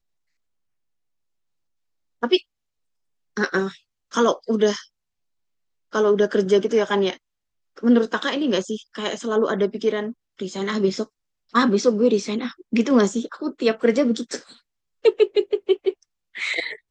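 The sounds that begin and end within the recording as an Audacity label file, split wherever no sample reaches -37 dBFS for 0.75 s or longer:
2.230000	2.400000	sound
3.370000	4.830000	sound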